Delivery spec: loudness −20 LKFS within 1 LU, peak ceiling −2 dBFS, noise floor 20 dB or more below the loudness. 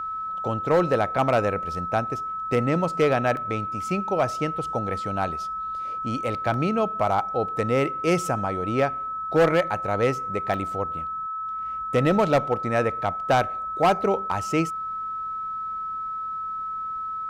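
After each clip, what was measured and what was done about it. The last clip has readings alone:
number of dropouts 3; longest dropout 1.4 ms; interfering tone 1,300 Hz; level of the tone −28 dBFS; integrated loudness −25.0 LKFS; sample peak −12.0 dBFS; target loudness −20.0 LKFS
→ repair the gap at 0:03.37/0:06.54/0:10.54, 1.4 ms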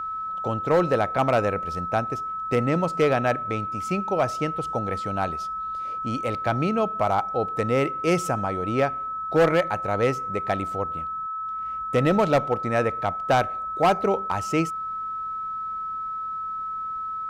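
number of dropouts 0; interfering tone 1,300 Hz; level of the tone −28 dBFS
→ notch filter 1,300 Hz, Q 30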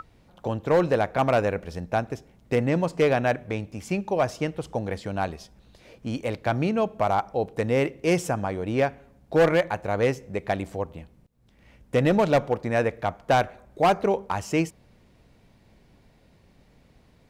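interfering tone none found; integrated loudness −25.5 LKFS; sample peak −11.5 dBFS; target loudness −20.0 LKFS
→ level +5.5 dB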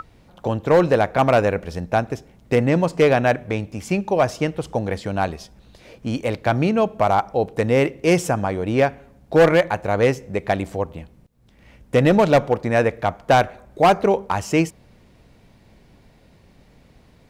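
integrated loudness −20.0 LKFS; sample peak −6.0 dBFS; background noise floor −53 dBFS

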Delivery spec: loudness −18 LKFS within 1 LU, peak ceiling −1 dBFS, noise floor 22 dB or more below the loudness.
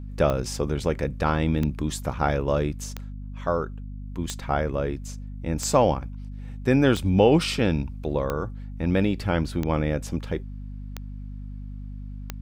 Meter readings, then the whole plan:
number of clicks 10; mains hum 50 Hz; hum harmonics up to 250 Hz; level of the hum −33 dBFS; integrated loudness −25.0 LKFS; sample peak −6.0 dBFS; target loudness −18.0 LKFS
→ click removal
mains-hum notches 50/100/150/200/250 Hz
level +7 dB
brickwall limiter −1 dBFS

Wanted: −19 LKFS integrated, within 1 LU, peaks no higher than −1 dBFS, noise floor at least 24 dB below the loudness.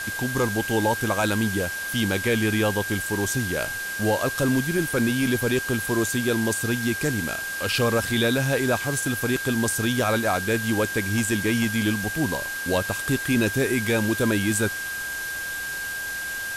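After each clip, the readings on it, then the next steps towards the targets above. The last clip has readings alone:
interfering tone 1,600 Hz; level of the tone −29 dBFS; background noise floor −31 dBFS; target noise floor −48 dBFS; integrated loudness −24.0 LKFS; sample peak −11.0 dBFS; target loudness −19.0 LKFS
→ notch filter 1,600 Hz, Q 30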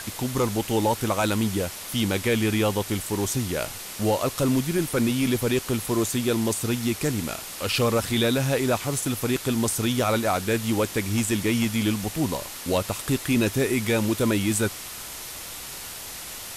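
interfering tone none found; background noise floor −37 dBFS; target noise floor −49 dBFS
→ broadband denoise 12 dB, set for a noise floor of −37 dBFS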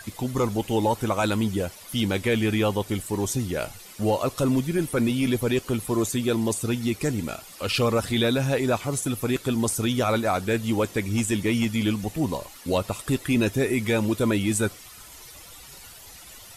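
background noise floor −45 dBFS; target noise floor −49 dBFS
→ broadband denoise 6 dB, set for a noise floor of −45 dBFS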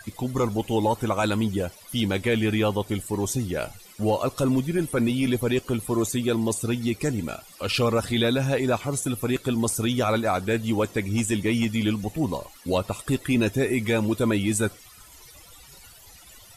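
background noise floor −49 dBFS; integrated loudness −25.0 LKFS; sample peak −12.5 dBFS; target loudness −19.0 LKFS
→ level +6 dB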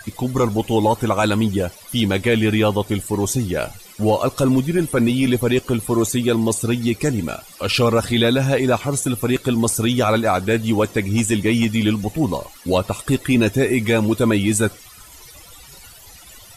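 integrated loudness −19.0 LKFS; sample peak −6.5 dBFS; background noise floor −43 dBFS

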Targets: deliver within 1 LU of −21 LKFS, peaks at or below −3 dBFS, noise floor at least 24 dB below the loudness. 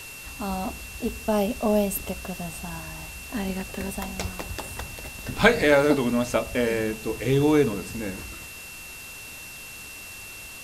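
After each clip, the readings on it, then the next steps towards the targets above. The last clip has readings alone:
interfering tone 2,700 Hz; level of the tone −41 dBFS; background noise floor −41 dBFS; target noise floor −50 dBFS; integrated loudness −25.5 LKFS; sample peak −3.5 dBFS; target loudness −21.0 LKFS
→ notch filter 2,700 Hz, Q 30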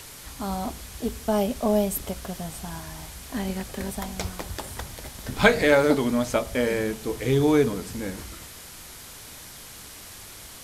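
interfering tone none found; background noise floor −43 dBFS; target noise floor −50 dBFS
→ broadband denoise 7 dB, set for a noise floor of −43 dBFS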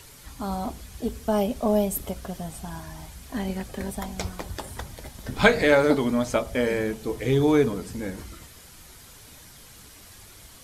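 background noise floor −48 dBFS; target noise floor −50 dBFS
→ broadband denoise 6 dB, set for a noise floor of −48 dBFS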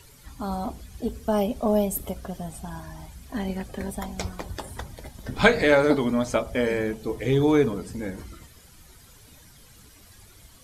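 background noise floor −52 dBFS; integrated loudness −25.5 LKFS; sample peak −3.5 dBFS; target loudness −21.0 LKFS
→ level +4.5 dB
brickwall limiter −3 dBFS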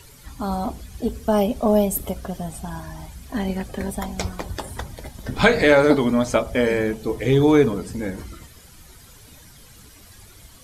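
integrated loudness −21.5 LKFS; sample peak −3.0 dBFS; background noise floor −47 dBFS

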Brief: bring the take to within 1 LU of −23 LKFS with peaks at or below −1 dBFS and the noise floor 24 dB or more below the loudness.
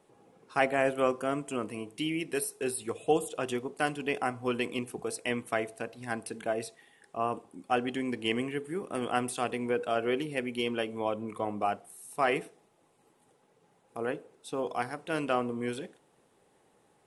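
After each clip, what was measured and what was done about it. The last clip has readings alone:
integrated loudness −32.5 LKFS; sample peak −11.5 dBFS; target loudness −23.0 LKFS
→ level +9.5 dB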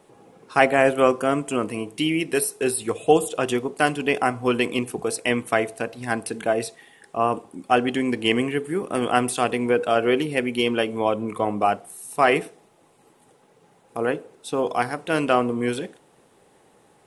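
integrated loudness −23.0 LKFS; sample peak −2.0 dBFS; background noise floor −58 dBFS

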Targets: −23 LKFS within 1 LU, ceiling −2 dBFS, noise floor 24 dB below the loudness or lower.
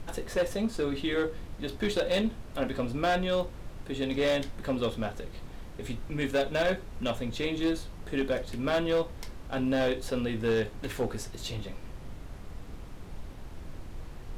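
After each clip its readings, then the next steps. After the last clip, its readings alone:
share of clipped samples 1.5%; peaks flattened at −21.5 dBFS; background noise floor −44 dBFS; target noise floor −55 dBFS; integrated loudness −31.0 LKFS; sample peak −21.5 dBFS; target loudness −23.0 LKFS
→ clipped peaks rebuilt −21.5 dBFS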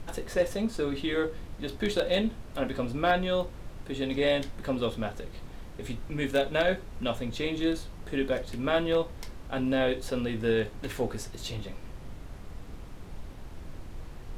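share of clipped samples 0.0%; background noise floor −44 dBFS; target noise floor −55 dBFS
→ noise reduction from a noise print 11 dB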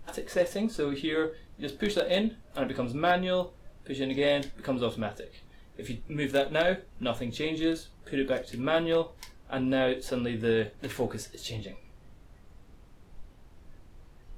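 background noise floor −55 dBFS; integrated loudness −30.5 LKFS; sample peak −12.5 dBFS; target loudness −23.0 LKFS
→ level +7.5 dB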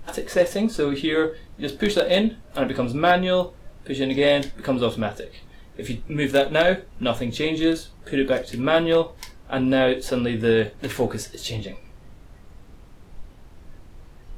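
integrated loudness −23.0 LKFS; sample peak −5.0 dBFS; background noise floor −47 dBFS

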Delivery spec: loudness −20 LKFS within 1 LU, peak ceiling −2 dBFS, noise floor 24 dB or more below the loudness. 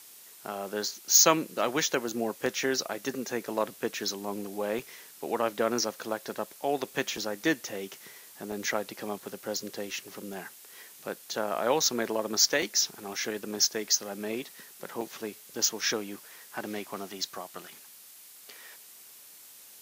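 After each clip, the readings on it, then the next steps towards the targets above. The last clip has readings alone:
number of dropouts 8; longest dropout 3.1 ms; background noise floor −51 dBFS; target noise floor −54 dBFS; integrated loudness −29.5 LKFS; sample peak −6.5 dBFS; target loudness −20.0 LKFS
→ repair the gap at 0:02.46/0:04.79/0:07.17/0:08.52/0:12.62/0:13.65/0:15.01/0:15.81, 3.1 ms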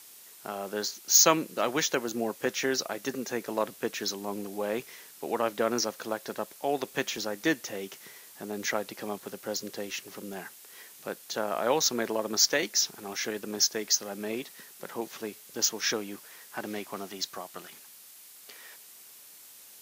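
number of dropouts 0; background noise floor −51 dBFS; target noise floor −54 dBFS
→ broadband denoise 6 dB, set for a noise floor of −51 dBFS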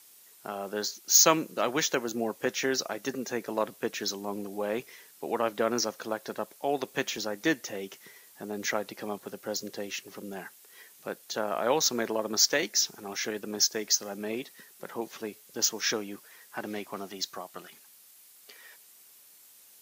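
background noise floor −56 dBFS; integrated loudness −29.5 LKFS; sample peak −6.5 dBFS; target loudness −20.0 LKFS
→ level +9.5 dB
brickwall limiter −2 dBFS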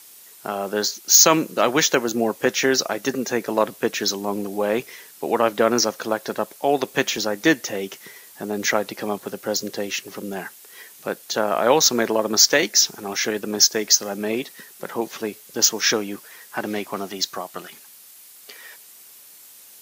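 integrated loudness −20.5 LKFS; sample peak −2.0 dBFS; background noise floor −46 dBFS

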